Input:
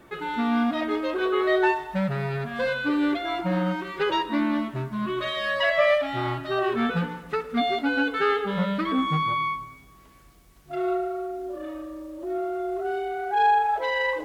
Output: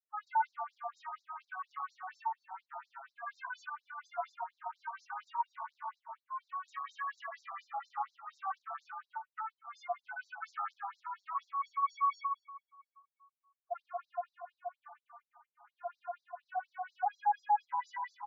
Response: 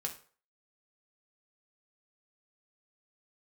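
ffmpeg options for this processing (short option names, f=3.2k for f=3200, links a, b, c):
-filter_complex "[0:a]atempo=0.78,highshelf=f=4.7k:g=9,afftdn=nr=21:nf=-31,acompressor=threshold=-30dB:ratio=5,alimiter=level_in=3.5dB:limit=-24dB:level=0:latency=1:release=10,volume=-3.5dB,adynamicsmooth=sensitivity=4.5:basefreq=770,flanger=delay=5.8:depth=1.2:regen=-79:speed=1.3:shape=triangular,equalizer=f=125:t=o:w=1:g=9,equalizer=f=250:t=o:w=1:g=11,equalizer=f=500:t=o:w=1:g=5,equalizer=f=1k:t=o:w=1:g=7,equalizer=f=2k:t=o:w=1:g=-5,equalizer=f=4k:t=o:w=1:g=-11,asplit=2[a][b];[b]adelay=333,lowpass=f=1.2k:p=1,volume=-15.5dB,asplit=2[c][d];[d]adelay=333,lowpass=f=1.2k:p=1,volume=0.53,asplit=2[e][f];[f]adelay=333,lowpass=f=1.2k:p=1,volume=0.53,asplit=2[g][h];[h]adelay=333,lowpass=f=1.2k:p=1,volume=0.53,asplit=2[i][j];[j]adelay=333,lowpass=f=1.2k:p=1,volume=0.53[k];[a][c][e][g][i][k]amix=inputs=6:normalize=0,afftfilt=real='re*between(b*sr/1024,940*pow(5500/940,0.5+0.5*sin(2*PI*4.2*pts/sr))/1.41,940*pow(5500/940,0.5+0.5*sin(2*PI*4.2*pts/sr))*1.41)':imag='im*between(b*sr/1024,940*pow(5500/940,0.5+0.5*sin(2*PI*4.2*pts/sr))/1.41,940*pow(5500/940,0.5+0.5*sin(2*PI*4.2*pts/sr))*1.41)':win_size=1024:overlap=0.75,volume=5.5dB"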